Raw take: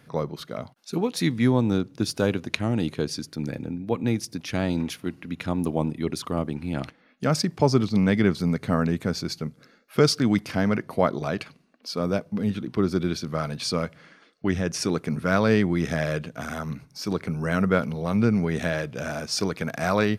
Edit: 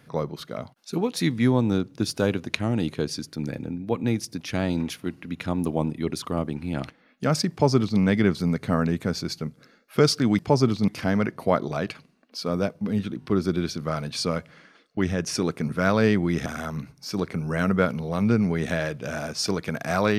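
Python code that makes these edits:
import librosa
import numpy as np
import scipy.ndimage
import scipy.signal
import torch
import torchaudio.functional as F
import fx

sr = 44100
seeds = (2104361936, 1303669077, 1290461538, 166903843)

y = fx.edit(x, sr, fx.duplicate(start_s=7.51, length_s=0.49, to_s=10.39),
    fx.stutter(start_s=12.71, slice_s=0.02, count=3),
    fx.cut(start_s=15.93, length_s=0.46), tone=tone)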